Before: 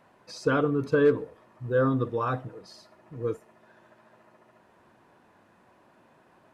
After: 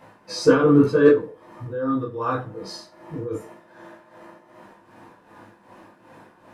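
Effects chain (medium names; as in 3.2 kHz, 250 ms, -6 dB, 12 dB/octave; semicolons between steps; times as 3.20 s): 1.07–3.31 s: compression 12:1, threshold -33 dBFS, peak gain reduction 16.5 dB; tremolo 2.6 Hz, depth 71%; reverberation RT60 0.30 s, pre-delay 7 ms, DRR -6 dB; trim +6.5 dB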